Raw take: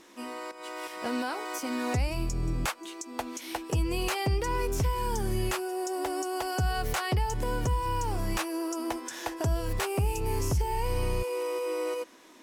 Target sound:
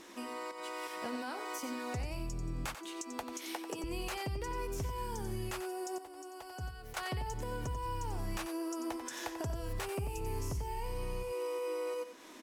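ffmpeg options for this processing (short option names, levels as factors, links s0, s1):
-filter_complex "[0:a]asettb=1/sr,asplit=3[s0][s1][s2];[s0]atrim=end=3.234[s3];[s1]atrim=start=3.23:end=3.84,asetpts=PTS-STARTPTS,afade=t=in:d=0.004:c=qsin,afade=t=out:st=0.606:d=0.004:c=qsin,highpass=f=230:w=0.5412,highpass=f=230:w=1.3066[s4];[s2]atrim=start=3.836[s5];[s3][s4]acrossfade=d=0.004:c1=hsin:c2=qsin[s6];[s6][s5]acrossfade=d=0.004:c1=qsin:c2=hsin,asettb=1/sr,asplit=3[s7][s8][s9];[s7]atrim=end=5.984[s10];[s8]atrim=start=5.98:end=6.97,asetpts=PTS-STARTPTS,afade=t=in:d=0.004:c=qsin,afade=t=out:st=0.986:d=0.004:c=qsin,agate=range=0.141:threshold=0.0631:ratio=16:detection=peak[s11];[s9]atrim=start=6.966[s12];[s10][s11]acrossfade=d=0.004:c1=hsin:c2=qsin[s13];[s13][s12]acrossfade=d=0.004:c1=qsin:c2=hsin,acompressor=threshold=0.00708:ratio=2.5,aecho=1:1:91:0.335,volume=1.19"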